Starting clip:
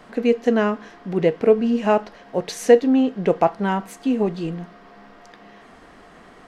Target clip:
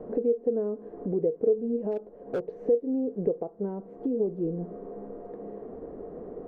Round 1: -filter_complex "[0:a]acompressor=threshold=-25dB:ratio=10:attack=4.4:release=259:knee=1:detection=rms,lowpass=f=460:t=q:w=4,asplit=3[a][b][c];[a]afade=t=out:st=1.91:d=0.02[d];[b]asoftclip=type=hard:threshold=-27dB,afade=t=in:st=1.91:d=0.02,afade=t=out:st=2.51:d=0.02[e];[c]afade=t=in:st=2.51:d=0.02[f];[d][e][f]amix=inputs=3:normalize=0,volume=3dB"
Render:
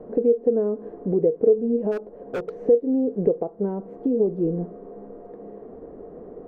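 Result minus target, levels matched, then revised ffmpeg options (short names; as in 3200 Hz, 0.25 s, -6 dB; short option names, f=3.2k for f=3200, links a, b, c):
compressor: peak gain reduction -6.5 dB
-filter_complex "[0:a]acompressor=threshold=-32dB:ratio=10:attack=4.4:release=259:knee=1:detection=rms,lowpass=f=460:t=q:w=4,asplit=3[a][b][c];[a]afade=t=out:st=1.91:d=0.02[d];[b]asoftclip=type=hard:threshold=-27dB,afade=t=in:st=1.91:d=0.02,afade=t=out:st=2.51:d=0.02[e];[c]afade=t=in:st=2.51:d=0.02[f];[d][e][f]amix=inputs=3:normalize=0,volume=3dB"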